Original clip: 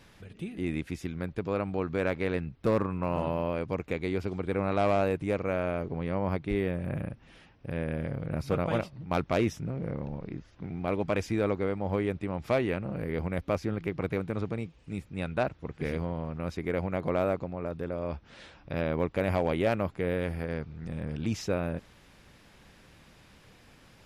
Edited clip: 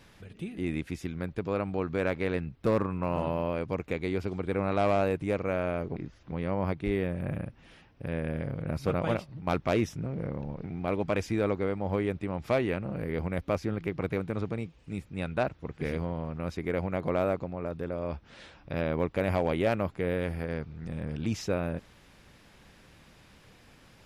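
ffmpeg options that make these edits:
-filter_complex "[0:a]asplit=4[a][b][c][d];[a]atrim=end=5.962[e];[b]atrim=start=10.278:end=10.642[f];[c]atrim=start=5.958:end=10.282[g];[d]atrim=start=10.638[h];[e][f]acrossfade=d=0.004:c1=hsin:c2=hsin[i];[i][g]acrossfade=d=0.004:c1=hsin:c2=hsin[j];[j][h]acrossfade=d=0.004:c1=hsin:c2=hsin"

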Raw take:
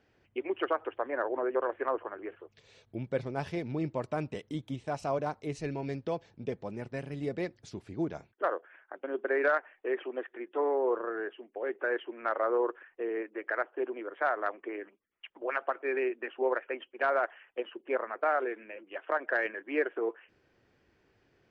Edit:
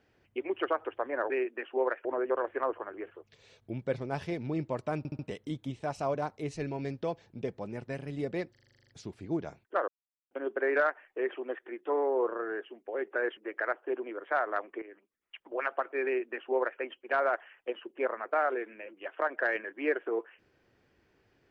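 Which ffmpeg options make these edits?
-filter_complex "[0:a]asplit=19[a][b][c][d][e][f][g][h][i][j][k][l][m][n][o][p][q][r][s];[a]atrim=end=1.302[t];[b]atrim=start=15.948:end=16.702[u];[c]atrim=start=1.298:end=4.302[v];[d]atrim=start=4.228:end=4.302[w];[e]atrim=start=4.228:end=4.302[x];[f]atrim=start=4.228:end=7.592[y];[g]atrim=start=7.548:end=7.592[z];[h]atrim=start=7.548:end=7.592[aa];[i]atrim=start=7.548:end=7.592[ab];[j]atrim=start=7.548:end=7.592[ac];[k]atrim=start=7.548:end=7.592[ad];[l]atrim=start=7.548:end=7.592[ae];[m]atrim=start=7.548:end=7.592[af];[n]atrim=start=7.548:end=7.592[ag];[o]atrim=start=7.548:end=8.56,asetpts=PTS-STARTPTS,afade=t=out:st=1.008:d=0.004:c=hsin[ah];[p]atrim=start=8.56:end=8.99,asetpts=PTS-STARTPTS,volume=0[ai];[q]atrim=start=8.99:end=12.052,asetpts=PTS-STARTPTS,afade=t=in:d=0.004:c=hsin[aj];[r]atrim=start=13.268:end=14.72,asetpts=PTS-STARTPTS,afade=t=out:st=1.448:d=0.004:c=hsin:silence=0.223872[ak];[s]atrim=start=14.72,asetpts=PTS-STARTPTS,afade=t=in:d=0.56:silence=0.223872[al];[t][u]acrossfade=d=0.004:c1=hsin:c2=hsin[am];[am][v]acrossfade=d=0.004:c1=hsin:c2=hsin[an];[an][w]acrossfade=d=0.004:c1=hsin:c2=hsin[ao];[ao][x]acrossfade=d=0.004:c1=hsin:c2=hsin[ap];[ap][y]acrossfade=d=0.004:c1=hsin:c2=hsin[aq];[aq][z]acrossfade=d=0.004:c1=hsin:c2=hsin[ar];[ar][aa]acrossfade=d=0.004:c1=hsin:c2=hsin[as];[as][ab]acrossfade=d=0.004:c1=hsin:c2=hsin[at];[at][ac]acrossfade=d=0.004:c1=hsin:c2=hsin[au];[au][ad]acrossfade=d=0.004:c1=hsin:c2=hsin[av];[av][ae]acrossfade=d=0.004:c1=hsin:c2=hsin[aw];[aw][af]acrossfade=d=0.004:c1=hsin:c2=hsin[ax];[ax][ag]acrossfade=d=0.004:c1=hsin:c2=hsin[ay];[ah][ai][aj]concat=n=3:v=0:a=1[az];[ay][az]acrossfade=d=0.004:c1=hsin:c2=hsin[ba];[ak][al]concat=n=2:v=0:a=1[bb];[ba][bb]acrossfade=d=0.004:c1=hsin:c2=hsin"

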